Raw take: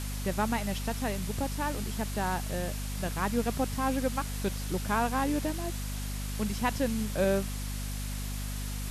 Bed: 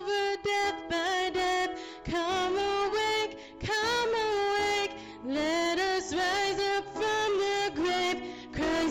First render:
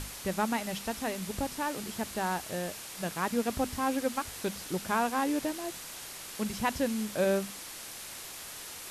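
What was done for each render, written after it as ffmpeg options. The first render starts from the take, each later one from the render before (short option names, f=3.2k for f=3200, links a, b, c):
-af "bandreject=f=50:t=h:w=6,bandreject=f=100:t=h:w=6,bandreject=f=150:t=h:w=6,bandreject=f=200:t=h:w=6,bandreject=f=250:t=h:w=6"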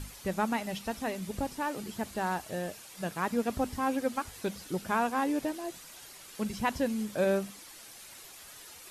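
-af "afftdn=nr=9:nf=-44"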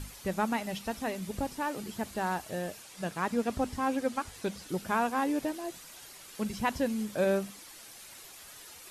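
-filter_complex "[0:a]asettb=1/sr,asplit=3[a][b][c];[a]atrim=end=2.834[d];[b]atrim=start=2.83:end=4.69,asetpts=PTS-STARTPTS,afade=t=in:d=0.004:c=qsin,afade=t=out:st=1.856:d=0.004:c=qsin,lowpass=11k[e];[c]atrim=start=4.686[f];[d][e]acrossfade=d=0.004:c1=hsin:c2=qsin[g];[g][f]acrossfade=d=0.004:c1=qsin:c2=hsin"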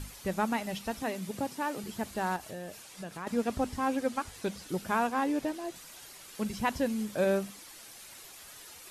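-filter_complex "[0:a]asettb=1/sr,asplit=3[a][b][c];[a]atrim=end=1.024[d];[b]atrim=start=1.02:end=1.84,asetpts=PTS-STARTPTS,afade=t=in:d=0.004:c=qsin,afade=t=out:st=0.816:d=0.004:c=qsin,highpass=f=110:w=0.5412,highpass=f=110:w=1.3066[e];[c]atrim=start=1.836[f];[d][e]acrossfade=d=0.004:c1=hsin:c2=qsin[g];[g][f]acrossfade=d=0.004:c1=qsin:c2=hsin,asettb=1/sr,asplit=3[h][i][j];[h]atrim=end=2.364[k];[i]atrim=start=2.36:end=3.27,asetpts=PTS-STARTPTS,afade=t=in:d=0.004:c=qsin,afade=t=out:st=0.906:d=0.004:c=qsin,acompressor=threshold=-39dB:ratio=2.5:attack=3.2:release=140:knee=1:detection=peak[l];[j]atrim=start=3.266[m];[k][l]acrossfade=d=0.004:c1=hsin:c2=qsin[n];[n][m]acrossfade=d=0.004:c1=qsin:c2=hsin,asettb=1/sr,asplit=3[o][p][q];[o]atrim=end=5.074[r];[p]atrim=start=5.07:end=5.76,asetpts=PTS-STARTPTS,afade=t=in:d=0.004:c=qsin,afade=t=out:st=0.686:d=0.004:c=qsin,highshelf=f=9.7k:g=-7[s];[q]atrim=start=5.756[t];[r][s]acrossfade=d=0.004:c1=hsin:c2=qsin[u];[u][t]acrossfade=d=0.004:c1=qsin:c2=hsin"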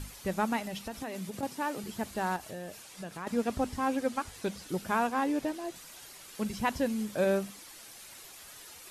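-filter_complex "[0:a]asettb=1/sr,asplit=3[a][b][c];[a]atrim=end=0.594[d];[b]atrim=start=0.59:end=1.43,asetpts=PTS-STARTPTS,afade=t=in:d=0.004:c=qsin,afade=t=out:st=0.836:d=0.004:c=qsin,acompressor=threshold=-33dB:ratio=6:attack=3.2:release=140:knee=1:detection=peak[e];[c]atrim=start=1.426[f];[d][e]acrossfade=d=0.004:c1=hsin:c2=qsin[g];[g][f]acrossfade=d=0.004:c1=qsin:c2=hsin"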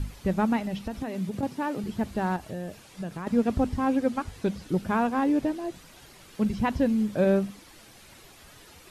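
-filter_complex "[0:a]lowshelf=f=370:g=11.5,acrossover=split=4700[a][b];[b]acompressor=threshold=-55dB:ratio=4:attack=1:release=60[c];[a][c]amix=inputs=2:normalize=0"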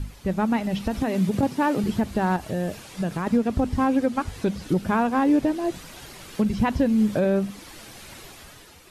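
-af "dynaudnorm=f=140:g=9:m=9dB,alimiter=limit=-12dB:level=0:latency=1:release=295"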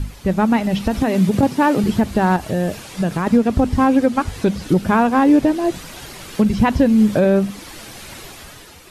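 -af "volume=7dB"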